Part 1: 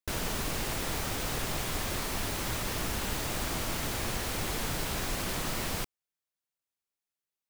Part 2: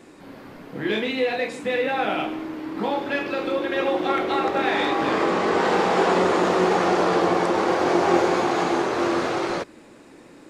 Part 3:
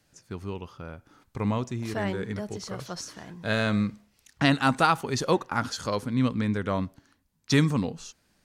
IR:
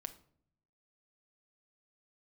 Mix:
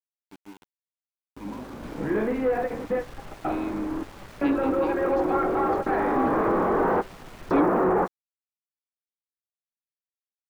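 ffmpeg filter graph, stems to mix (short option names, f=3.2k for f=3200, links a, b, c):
-filter_complex "[0:a]lowpass=1.9k,aeval=exprs='clip(val(0),-1,0.0188)':c=same,flanger=delay=0.6:depth=4.7:regen=79:speed=1.4:shape=sinusoidal,adelay=1750,volume=-3dB[a];[1:a]aeval=exprs='val(0)+0.00282*(sin(2*PI*50*n/s)+sin(2*PI*2*50*n/s)/2+sin(2*PI*3*50*n/s)/3+sin(2*PI*4*50*n/s)/4+sin(2*PI*5*50*n/s)/5)':c=same,asoftclip=type=tanh:threshold=-19dB,lowpass=f=1.5k:w=0.5412,lowpass=f=1.5k:w=1.3066,adelay=1250,volume=2dB[b];[2:a]aecho=1:1:4:0.53,aeval=exprs='sgn(val(0))*max(abs(val(0))-0.00841,0)':c=same,asplit=3[c][d][e];[c]bandpass=f=300:t=q:w=8,volume=0dB[f];[d]bandpass=f=870:t=q:w=8,volume=-6dB[g];[e]bandpass=f=2.24k:t=q:w=8,volume=-9dB[h];[f][g][h]amix=inputs=3:normalize=0,volume=1dB,asplit=2[i][j];[j]apad=whole_len=517886[k];[b][k]sidechaingate=range=-33dB:threshold=-56dB:ratio=16:detection=peak[l];[a][l][i]amix=inputs=3:normalize=0,aeval=exprs='val(0)*gte(abs(val(0)),0.00631)':c=same"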